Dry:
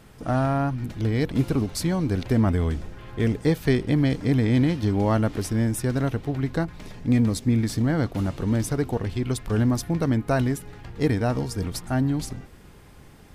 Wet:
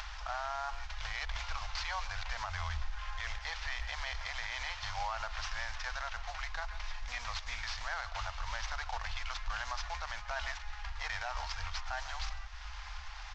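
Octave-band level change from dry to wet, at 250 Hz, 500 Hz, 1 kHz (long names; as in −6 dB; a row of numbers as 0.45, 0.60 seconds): below −40 dB, −22.5 dB, −5.5 dB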